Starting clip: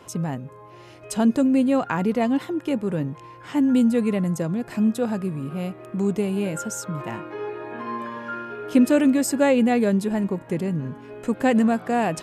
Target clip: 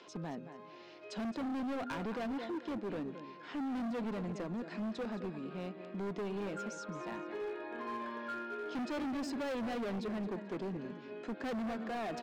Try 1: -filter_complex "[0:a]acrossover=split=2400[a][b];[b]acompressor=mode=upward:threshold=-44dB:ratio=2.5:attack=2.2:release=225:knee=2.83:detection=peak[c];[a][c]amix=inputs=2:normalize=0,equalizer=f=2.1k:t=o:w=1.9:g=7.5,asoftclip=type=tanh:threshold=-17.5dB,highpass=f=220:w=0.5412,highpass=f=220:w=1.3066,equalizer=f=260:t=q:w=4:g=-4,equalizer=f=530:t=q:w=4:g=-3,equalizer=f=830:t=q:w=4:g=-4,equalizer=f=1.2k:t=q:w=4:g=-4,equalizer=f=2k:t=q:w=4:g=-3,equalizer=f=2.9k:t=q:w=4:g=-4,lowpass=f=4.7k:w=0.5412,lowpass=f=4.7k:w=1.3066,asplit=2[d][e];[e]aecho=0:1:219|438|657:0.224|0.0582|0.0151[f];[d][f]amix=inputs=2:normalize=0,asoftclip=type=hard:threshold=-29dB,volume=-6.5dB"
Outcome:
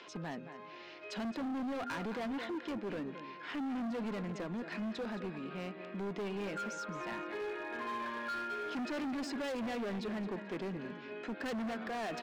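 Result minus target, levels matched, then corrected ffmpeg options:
soft clip: distortion +14 dB; 2000 Hz band +3.5 dB
-filter_complex "[0:a]acrossover=split=2400[a][b];[b]acompressor=mode=upward:threshold=-44dB:ratio=2.5:attack=2.2:release=225:knee=2.83:detection=peak[c];[a][c]amix=inputs=2:normalize=0,asoftclip=type=tanh:threshold=-8dB,highpass=f=220:w=0.5412,highpass=f=220:w=1.3066,equalizer=f=260:t=q:w=4:g=-4,equalizer=f=530:t=q:w=4:g=-3,equalizer=f=830:t=q:w=4:g=-4,equalizer=f=1.2k:t=q:w=4:g=-4,equalizer=f=2k:t=q:w=4:g=-3,equalizer=f=2.9k:t=q:w=4:g=-4,lowpass=f=4.7k:w=0.5412,lowpass=f=4.7k:w=1.3066,asplit=2[d][e];[e]aecho=0:1:219|438|657:0.224|0.0582|0.0151[f];[d][f]amix=inputs=2:normalize=0,asoftclip=type=hard:threshold=-29dB,volume=-6.5dB"

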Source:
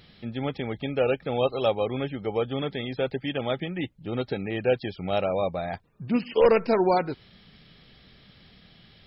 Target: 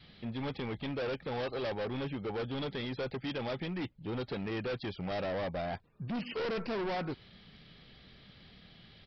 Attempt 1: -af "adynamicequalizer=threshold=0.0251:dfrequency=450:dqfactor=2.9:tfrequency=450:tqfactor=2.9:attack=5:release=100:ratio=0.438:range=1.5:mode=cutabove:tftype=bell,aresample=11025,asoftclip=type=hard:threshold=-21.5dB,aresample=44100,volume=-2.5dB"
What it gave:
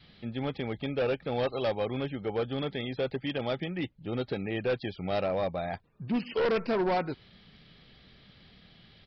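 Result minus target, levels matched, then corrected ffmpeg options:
hard clip: distortion -6 dB
-af "adynamicequalizer=threshold=0.0251:dfrequency=450:dqfactor=2.9:tfrequency=450:tqfactor=2.9:attack=5:release=100:ratio=0.438:range=1.5:mode=cutabove:tftype=bell,aresample=11025,asoftclip=type=hard:threshold=-30.5dB,aresample=44100,volume=-2.5dB"

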